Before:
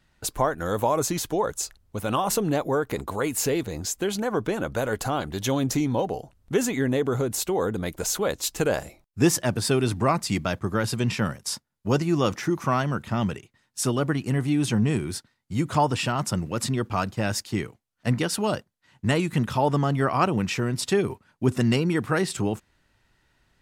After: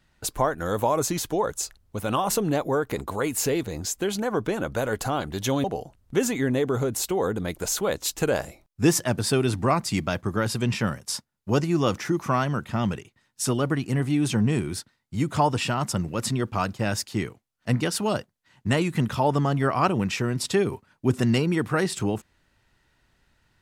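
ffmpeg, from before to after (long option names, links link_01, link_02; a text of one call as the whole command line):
ffmpeg -i in.wav -filter_complex "[0:a]asplit=2[link_01][link_02];[link_01]atrim=end=5.642[link_03];[link_02]atrim=start=6.018[link_04];[link_03][link_04]acrossfade=duration=0.004:curve1=hsin:curve2=hsin" out.wav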